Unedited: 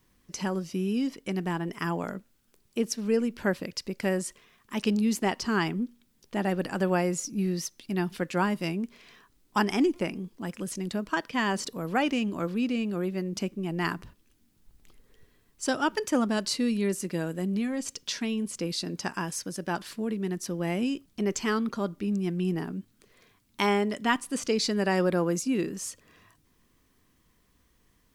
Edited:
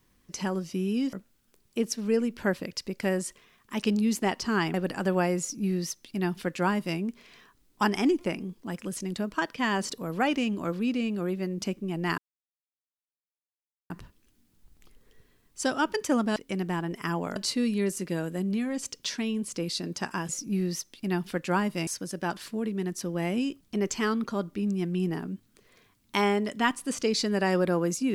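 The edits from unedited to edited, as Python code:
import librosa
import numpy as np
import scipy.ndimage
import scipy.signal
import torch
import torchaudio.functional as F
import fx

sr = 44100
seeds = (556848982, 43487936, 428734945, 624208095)

y = fx.edit(x, sr, fx.move(start_s=1.13, length_s=1.0, to_s=16.39),
    fx.cut(start_s=5.74, length_s=0.75),
    fx.duplicate(start_s=7.15, length_s=1.58, to_s=19.32),
    fx.insert_silence(at_s=13.93, length_s=1.72), tone=tone)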